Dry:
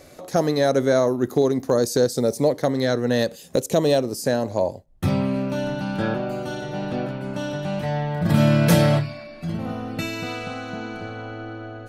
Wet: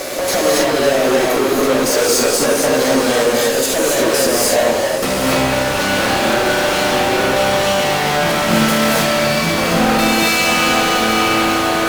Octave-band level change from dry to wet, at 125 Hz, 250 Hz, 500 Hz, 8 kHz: -2.5 dB, +5.0 dB, +7.0 dB, +17.0 dB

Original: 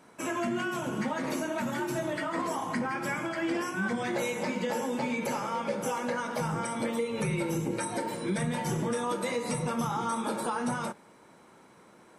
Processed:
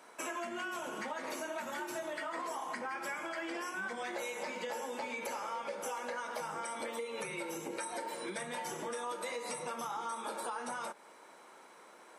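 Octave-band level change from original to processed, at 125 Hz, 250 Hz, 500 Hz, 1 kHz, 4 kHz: -23.5 dB, -15.0 dB, -8.0 dB, -6.0 dB, -5.0 dB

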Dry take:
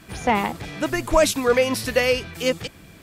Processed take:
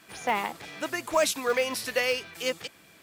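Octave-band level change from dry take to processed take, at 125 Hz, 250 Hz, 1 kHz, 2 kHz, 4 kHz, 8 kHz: -18.0 dB, -12.5 dB, -6.0 dB, -4.5 dB, -4.5 dB, -4.5 dB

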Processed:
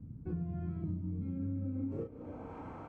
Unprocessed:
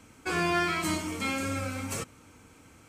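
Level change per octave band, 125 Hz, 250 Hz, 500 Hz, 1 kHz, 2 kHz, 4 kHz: +0.5 dB, -4.5 dB, -11.0 dB, -20.0 dB, under -30 dB, under -40 dB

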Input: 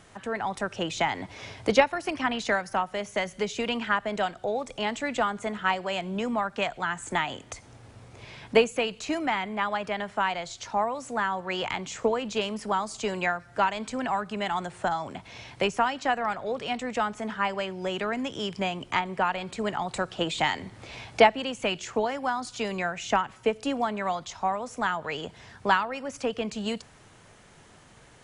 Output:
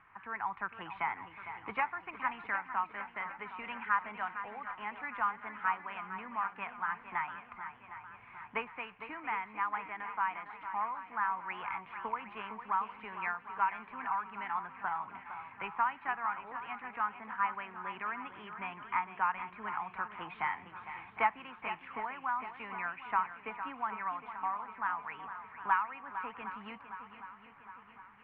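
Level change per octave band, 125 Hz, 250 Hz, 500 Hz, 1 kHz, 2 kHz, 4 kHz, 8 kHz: under -15 dB, -19.0 dB, -22.0 dB, -5.5 dB, -7.0 dB, -22.0 dB, under -40 dB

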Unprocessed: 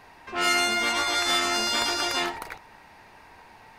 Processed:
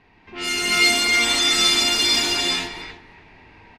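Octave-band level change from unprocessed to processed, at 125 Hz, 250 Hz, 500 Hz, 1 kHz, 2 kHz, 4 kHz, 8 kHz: +7.5 dB, +5.0 dB, +1.5 dB, -1.5 dB, +6.5 dB, +9.0 dB, +8.0 dB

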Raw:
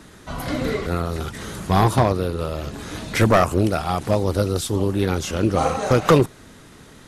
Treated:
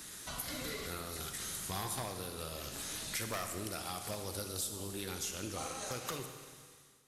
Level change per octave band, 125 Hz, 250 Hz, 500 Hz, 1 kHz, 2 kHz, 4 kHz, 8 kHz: -24.5 dB, -23.5 dB, -23.5 dB, -21.0 dB, -16.0 dB, -9.5 dB, -4.5 dB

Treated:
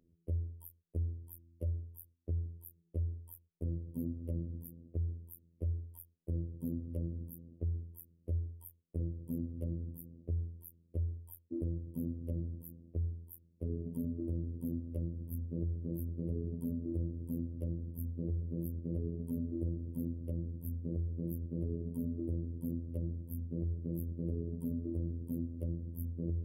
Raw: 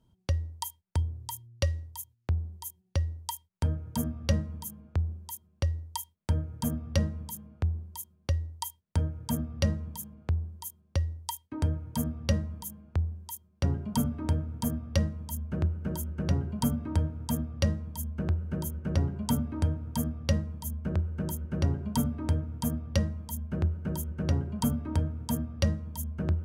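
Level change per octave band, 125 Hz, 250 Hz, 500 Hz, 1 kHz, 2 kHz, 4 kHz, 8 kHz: -7.5 dB, -6.5 dB, -7.5 dB, under -30 dB, under -40 dB, under -40 dB, -21.5 dB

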